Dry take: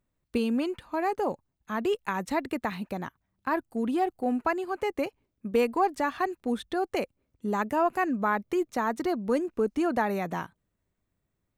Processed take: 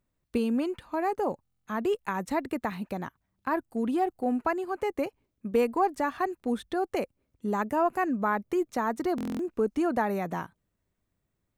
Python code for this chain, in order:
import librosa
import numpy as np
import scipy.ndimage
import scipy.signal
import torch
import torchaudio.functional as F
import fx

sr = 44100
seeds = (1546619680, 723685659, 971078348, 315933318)

y = fx.dynamic_eq(x, sr, hz=3500.0, q=0.76, threshold_db=-45.0, ratio=4.0, max_db=-5)
y = fx.buffer_glitch(y, sr, at_s=(1.43, 9.16), block=1024, repeats=9)